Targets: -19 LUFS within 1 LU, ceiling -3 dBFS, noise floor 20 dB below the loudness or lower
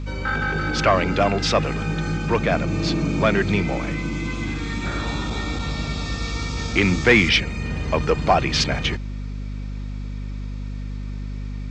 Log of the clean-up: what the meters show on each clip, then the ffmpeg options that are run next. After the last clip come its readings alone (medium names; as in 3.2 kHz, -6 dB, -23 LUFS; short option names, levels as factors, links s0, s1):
hum 50 Hz; highest harmonic 250 Hz; hum level -27 dBFS; loudness -22.0 LUFS; peak level -4.0 dBFS; loudness target -19.0 LUFS
-> -af "bandreject=f=50:t=h:w=6,bandreject=f=100:t=h:w=6,bandreject=f=150:t=h:w=6,bandreject=f=200:t=h:w=6,bandreject=f=250:t=h:w=6"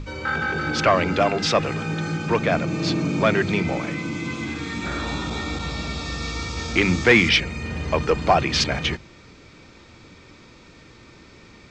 hum not found; loudness -22.0 LUFS; peak level -4.0 dBFS; loudness target -19.0 LUFS
-> -af "volume=1.41,alimiter=limit=0.708:level=0:latency=1"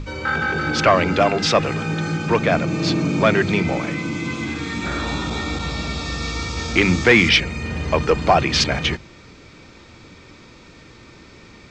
loudness -19.5 LUFS; peak level -3.0 dBFS; noise floor -45 dBFS